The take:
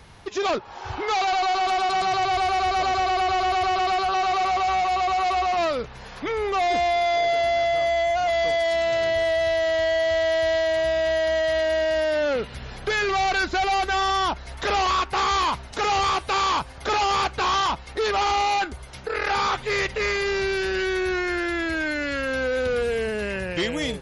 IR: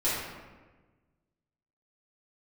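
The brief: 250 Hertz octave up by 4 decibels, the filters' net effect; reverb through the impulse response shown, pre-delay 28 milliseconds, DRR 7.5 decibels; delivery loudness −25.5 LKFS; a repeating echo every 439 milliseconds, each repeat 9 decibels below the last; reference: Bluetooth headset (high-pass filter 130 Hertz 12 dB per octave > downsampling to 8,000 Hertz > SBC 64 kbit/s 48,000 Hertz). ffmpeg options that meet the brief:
-filter_complex "[0:a]equalizer=frequency=250:width_type=o:gain=6.5,aecho=1:1:439|878|1317|1756:0.355|0.124|0.0435|0.0152,asplit=2[link_01][link_02];[1:a]atrim=start_sample=2205,adelay=28[link_03];[link_02][link_03]afir=irnorm=-1:irlink=0,volume=-18dB[link_04];[link_01][link_04]amix=inputs=2:normalize=0,highpass=130,aresample=8000,aresample=44100,volume=-4dB" -ar 48000 -c:a sbc -b:a 64k

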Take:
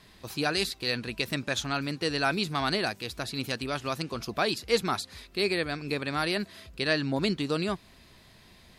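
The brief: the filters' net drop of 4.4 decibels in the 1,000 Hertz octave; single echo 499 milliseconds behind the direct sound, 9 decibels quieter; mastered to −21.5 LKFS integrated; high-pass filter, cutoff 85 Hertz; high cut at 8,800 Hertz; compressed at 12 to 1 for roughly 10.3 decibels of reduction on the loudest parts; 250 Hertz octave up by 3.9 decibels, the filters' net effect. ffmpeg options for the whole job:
ffmpeg -i in.wav -af "highpass=85,lowpass=8800,equalizer=frequency=250:width_type=o:gain=5.5,equalizer=frequency=1000:width_type=o:gain=-7,acompressor=threshold=-29dB:ratio=12,aecho=1:1:499:0.355,volume=12.5dB" out.wav

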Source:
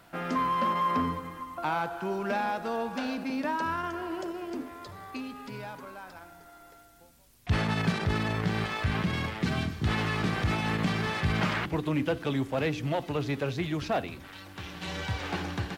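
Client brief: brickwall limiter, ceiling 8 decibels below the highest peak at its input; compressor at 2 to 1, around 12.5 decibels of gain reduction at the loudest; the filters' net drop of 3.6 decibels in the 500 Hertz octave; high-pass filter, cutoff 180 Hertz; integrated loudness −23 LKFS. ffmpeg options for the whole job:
ffmpeg -i in.wav -af "highpass=180,equalizer=frequency=500:width_type=o:gain=-4.5,acompressor=threshold=-49dB:ratio=2,volume=22.5dB,alimiter=limit=-13.5dB:level=0:latency=1" out.wav

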